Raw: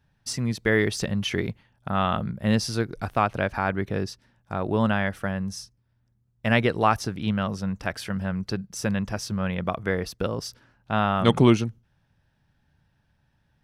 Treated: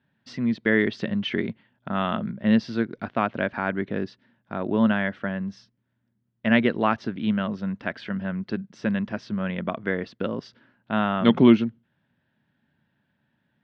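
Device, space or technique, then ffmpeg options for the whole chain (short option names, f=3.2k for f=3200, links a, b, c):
kitchen radio: -af "highpass=200,equalizer=f=230:t=q:w=4:g=6,equalizer=f=470:t=q:w=4:g=-4,equalizer=f=800:t=q:w=4:g=-7,equalizer=f=1.2k:t=q:w=4:g=-5,equalizer=f=2.5k:t=q:w=4:g=-4,lowpass=f=3.4k:w=0.5412,lowpass=f=3.4k:w=1.3066,volume=2dB"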